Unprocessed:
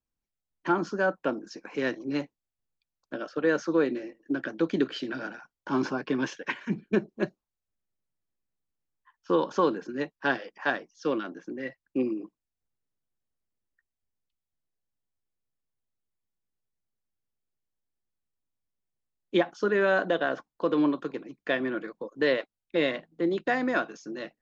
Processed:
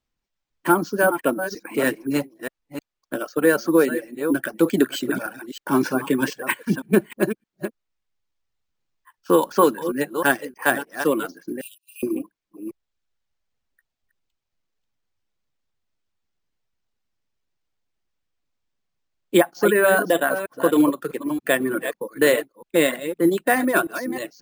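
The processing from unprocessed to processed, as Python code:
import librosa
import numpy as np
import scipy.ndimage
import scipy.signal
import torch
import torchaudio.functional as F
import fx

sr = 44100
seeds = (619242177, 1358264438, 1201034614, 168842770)

y = fx.reverse_delay(x, sr, ms=310, wet_db=-8.0)
y = fx.dereverb_blind(y, sr, rt60_s=0.89)
y = np.repeat(y[::4], 4)[:len(y)]
y = fx.brickwall_highpass(y, sr, low_hz=2400.0, at=(11.61, 12.03))
y = F.gain(torch.from_numpy(y), 8.0).numpy()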